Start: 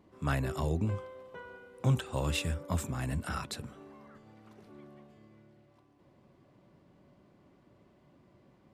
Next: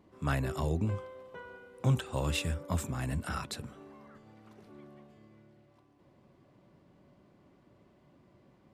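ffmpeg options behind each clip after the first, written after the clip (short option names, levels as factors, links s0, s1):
-af anull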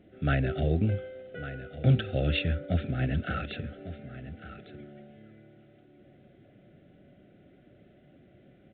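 -af "asuperstop=centerf=1000:order=12:qfactor=1.9,aecho=1:1:1151:0.211,volume=1.78" -ar 8000 -c:a pcm_mulaw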